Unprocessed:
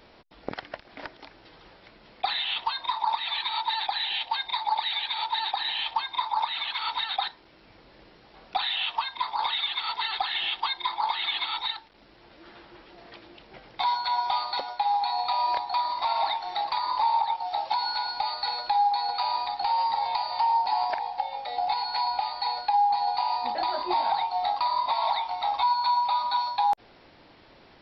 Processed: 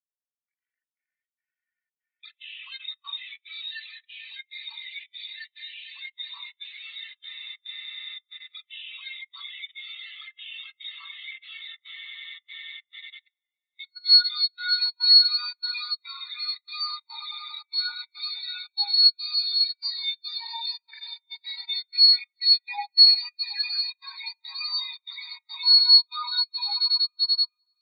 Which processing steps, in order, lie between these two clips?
spectral peaks clipped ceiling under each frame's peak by 13 dB; on a send: echo with a slow build-up 95 ms, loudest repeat 8, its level -12.5 dB; on the sum: trance gate "xx.xxxxx.x" 143 bpm -12 dB; high-pass 1.3 kHz 24 dB/octave; level rider gain up to 14 dB; in parallel at -2.5 dB: peak limiter -10 dBFS, peak gain reduction 7.5 dB; on the sum: peaking EQ 2.5 kHz +6.5 dB 1.5 oct; spring tank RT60 1.3 s, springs 36 ms, chirp 45 ms, DRR 4 dB; level held to a coarse grid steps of 13 dB; spectral contrast expander 4:1; trim -8.5 dB

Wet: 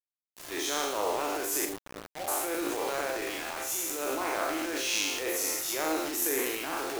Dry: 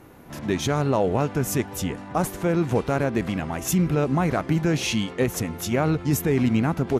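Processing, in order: spectral sustain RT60 1.06 s; elliptic high-pass 300 Hz, stop band 40 dB; tilt EQ +2 dB/octave; transient shaper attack -9 dB, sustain +10 dB; 1.65–2.28 s: rippled Chebyshev low-pass 800 Hz, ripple 6 dB; 3.09–4.02 s: compression 3:1, threshold -23 dBFS, peak gain reduction 5.5 dB; on a send: flutter echo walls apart 6.5 m, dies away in 0.29 s; on the sum: bit crusher 5-bit; trim -8.5 dB

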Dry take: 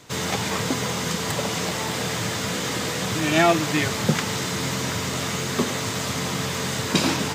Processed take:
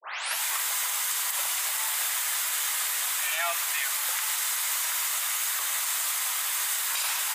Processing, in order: tape start-up on the opening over 0.42 s; Bessel high-pass 1.3 kHz, order 6; resonant high shelf 7.9 kHz +12 dB, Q 1.5; peak limiter -18 dBFS, peak gain reduction 9 dB

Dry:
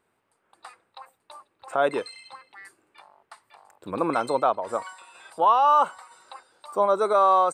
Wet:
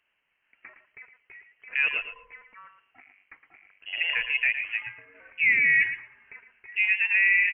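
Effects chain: feedback delay 113 ms, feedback 16%, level -10 dB; frequency inversion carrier 3.1 kHz; trim -3 dB

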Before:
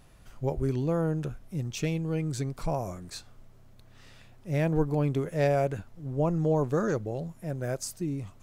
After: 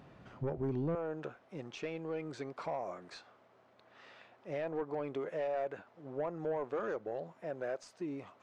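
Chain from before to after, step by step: high-pass 160 Hz 12 dB/octave, from 0.95 s 560 Hz; compression 2:1, threshold -40 dBFS, peak gain reduction 9 dB; saturation -34.5 dBFS, distortion -13 dB; tape spacing loss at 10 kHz 32 dB; trim +7 dB

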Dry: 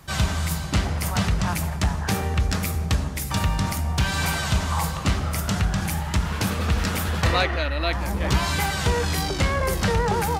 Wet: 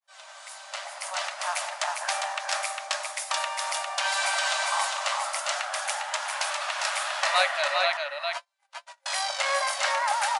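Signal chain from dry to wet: fade-in on the opening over 1.66 s; 7.97–9.06 s: gate -16 dBFS, range -56 dB; FFT band-pass 540–11000 Hz; on a send: delay 403 ms -4 dB

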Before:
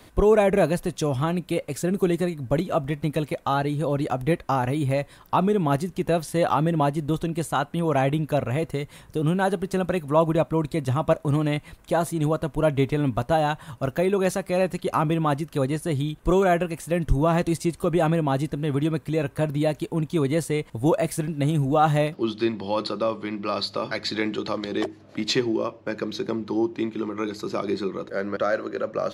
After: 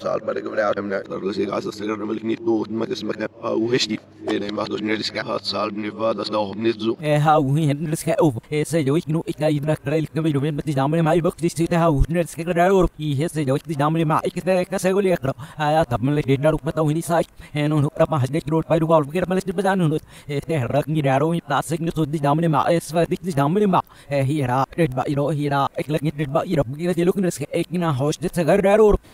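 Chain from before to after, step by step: reverse the whole clip; trim +3.5 dB

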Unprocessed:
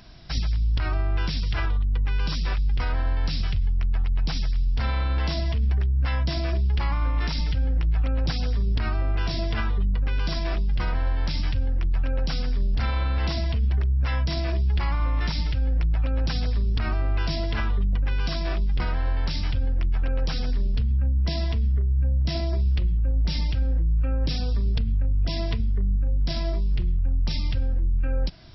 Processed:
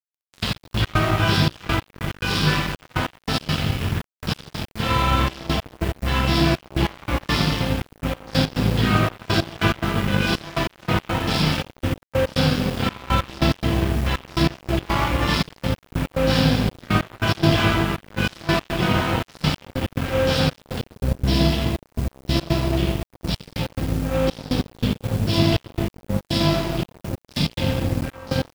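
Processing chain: tape start-up on the opening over 0.42 s; gain riding within 4 dB 2 s; high-pass 99 Hz 24 dB/octave; word length cut 8-bit, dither triangular; reverberation RT60 2.1 s, pre-delay 5 ms, DRR -11.5 dB; trance gate "xx..x..x.xxx" 142 bpm -12 dB; treble shelf 2.4 kHz -5 dB; crossover distortion -29 dBFS; dynamic bell 3.1 kHz, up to +6 dB, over -47 dBFS, Q 2.1; trim +3 dB

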